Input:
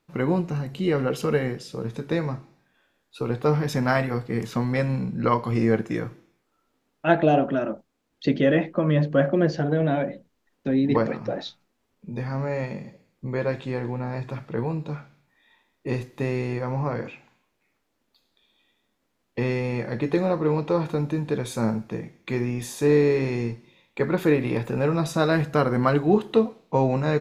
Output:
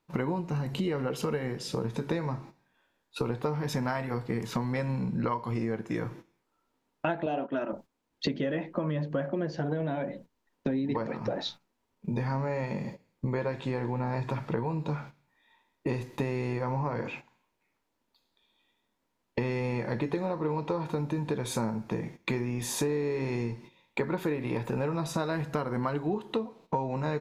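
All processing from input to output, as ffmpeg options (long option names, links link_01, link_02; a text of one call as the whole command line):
ffmpeg -i in.wav -filter_complex "[0:a]asettb=1/sr,asplit=3[link_01][link_02][link_03];[link_01]atrim=end=7.264[link_04];[link_02]atrim=start=7.26:end=7.73,asetpts=PTS-STARTPTS,afade=type=in:duration=0.004:curve=qsin,afade=type=out:start_time=0.466:duration=0.004:curve=qsin,aemphasis=mode=production:type=75fm,agate=range=-13dB:threshold=-29dB:ratio=16:release=100:detection=peak,highpass=200,lowpass=3200[link_05];[link_03]atrim=start=7.726[link_06];[link_04][link_05]acrossfade=duration=0.004:curve1=hsin:curve2=qsin[link_07];[link_07][link_06]acrossfade=duration=0.004:curve1=qsin:curve2=hsin,agate=range=-12dB:threshold=-45dB:ratio=16:detection=peak,equalizer=frequency=940:width=7.5:gain=8.5,acompressor=threshold=-34dB:ratio=10,volume=6.5dB" out.wav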